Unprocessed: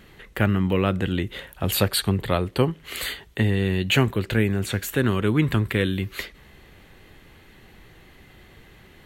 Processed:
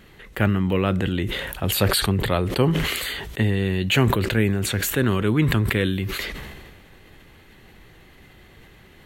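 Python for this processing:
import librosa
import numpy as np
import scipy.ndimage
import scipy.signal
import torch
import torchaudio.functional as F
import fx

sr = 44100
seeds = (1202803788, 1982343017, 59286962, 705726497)

y = fx.sustainer(x, sr, db_per_s=33.0)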